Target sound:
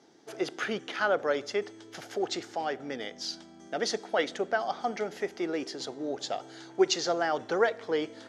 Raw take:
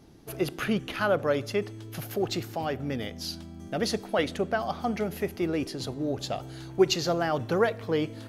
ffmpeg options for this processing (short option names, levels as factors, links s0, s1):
-af "highpass=440,equalizer=f=590:t=q:w=4:g=-4,equalizer=f=1100:t=q:w=4:g=-6,equalizer=f=2600:t=q:w=4:g=-8,equalizer=f=4200:t=q:w=4:g=-4,lowpass=f=7300:w=0.5412,lowpass=f=7300:w=1.3066,volume=1.33"